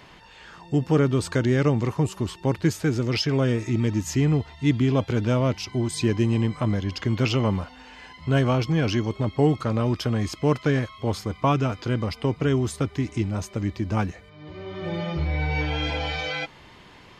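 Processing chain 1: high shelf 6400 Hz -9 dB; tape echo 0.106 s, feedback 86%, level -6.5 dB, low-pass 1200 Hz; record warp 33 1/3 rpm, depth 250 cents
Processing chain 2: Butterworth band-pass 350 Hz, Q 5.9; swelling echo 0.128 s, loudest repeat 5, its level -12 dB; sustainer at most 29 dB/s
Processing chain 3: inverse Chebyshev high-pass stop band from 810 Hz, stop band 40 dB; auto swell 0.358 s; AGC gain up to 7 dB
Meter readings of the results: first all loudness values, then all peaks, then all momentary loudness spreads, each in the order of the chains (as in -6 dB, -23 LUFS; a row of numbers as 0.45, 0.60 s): -24.0, -32.5, -32.0 LUFS; -7.0, -16.5, -13.0 dBFS; 8, 10, 23 LU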